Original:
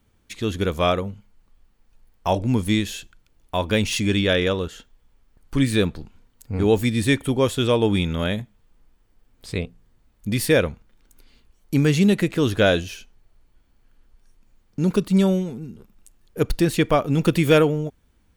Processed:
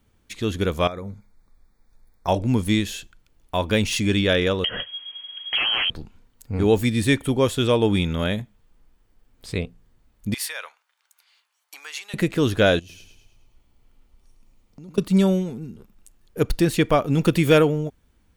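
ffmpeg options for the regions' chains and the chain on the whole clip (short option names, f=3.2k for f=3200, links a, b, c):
-filter_complex "[0:a]asettb=1/sr,asplit=3[a][b][c];[a]atrim=end=0.874[d];[b]atrim=start=0.87:end=2.28,asetpts=PTS-STARTPTS,afade=t=in:d=0.004:c=qsin,afade=t=out:st=1.406:d=0.004:c=qsin,acompressor=threshold=-28dB:ratio=16:attack=3.2:release=140:knee=1:detection=peak,asuperstop=centerf=2900:order=12:qfactor=2.9[e];[c]atrim=start=2.276[f];[d][e]acrossfade=d=0.004:c1=hsin:c2=qsin[g];[g][f]acrossfade=d=0.004:c1=qsin:c2=hsin,asettb=1/sr,asplit=3[h][i][j];[h]atrim=end=4.644[k];[i]atrim=start=4.64:end=5.9,asetpts=PTS-STARTPTS,afade=t=in:d=0.004:c=qsin,afade=t=out:st=1.256:d=0.004:c=qsin,aeval=exprs='0.422*sin(PI/2*5.01*val(0)/0.422)':c=same,lowpass=f=2.8k:t=q:w=0.5098,lowpass=f=2.8k:t=q:w=0.6013,lowpass=f=2.8k:t=q:w=0.9,lowpass=f=2.8k:t=q:w=2.563,afreqshift=-3300,acompressor=threshold=-21dB:ratio=4:attack=3.2:release=140:knee=1:detection=peak[l];[j]atrim=start=5.896[m];[k][l]acrossfade=d=0.004:c1=hsin:c2=qsin[n];[n][m]acrossfade=d=0.004:c1=qsin:c2=hsin,asettb=1/sr,asplit=3[o][p][q];[o]atrim=end=10.344[r];[p]atrim=start=10.34:end=12.14,asetpts=PTS-STARTPTS,afade=t=in:d=0.004:c=qsin,afade=t=out:st=1.796:d=0.004:c=qsin,highshelf=f=12k:g=-4,acompressor=threshold=-20dB:ratio=10:attack=3.2:release=140:knee=1:detection=peak,highpass=f=850:w=0.5412,highpass=f=850:w=1.3066[s];[q]atrim=start=12.136[t];[r][s]acrossfade=d=0.004:c1=hsin:c2=qsin[u];[u][t]acrossfade=d=0.004:c1=qsin:c2=hsin,asettb=1/sr,asplit=3[v][w][x];[v]atrim=end=12.794[y];[w]atrim=start=12.79:end=14.98,asetpts=PTS-STARTPTS,afade=t=in:d=0.004:c=qsin,afade=t=out:st=2.186:d=0.004:c=qsin,acompressor=threshold=-43dB:ratio=4:attack=3.2:release=140:knee=1:detection=peak,equalizer=f=1.6k:w=6.3:g=-11.5,aecho=1:1:106|212|318|424|530|636:0.447|0.223|0.112|0.0558|0.0279|0.014,atrim=end_sample=96579[z];[x]atrim=start=14.976[aa];[y][z]acrossfade=d=0.004:c1=hsin:c2=qsin[ab];[ab][aa]acrossfade=d=0.004:c1=qsin:c2=hsin"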